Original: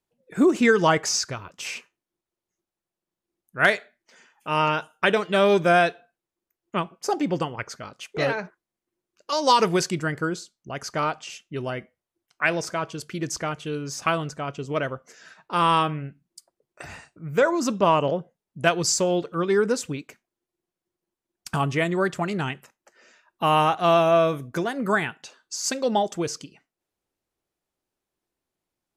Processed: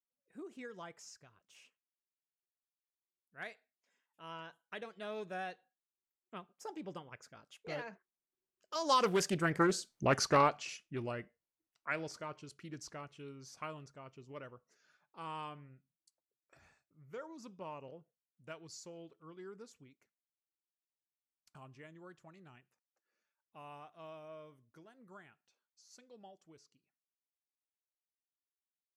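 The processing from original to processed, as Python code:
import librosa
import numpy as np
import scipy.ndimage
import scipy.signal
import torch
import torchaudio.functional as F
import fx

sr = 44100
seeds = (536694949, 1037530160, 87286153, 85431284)

y = fx.doppler_pass(x, sr, speed_mps=21, closest_m=4.0, pass_at_s=10.02)
y = fx.doppler_dist(y, sr, depth_ms=0.28)
y = F.gain(torch.from_numpy(y), 4.5).numpy()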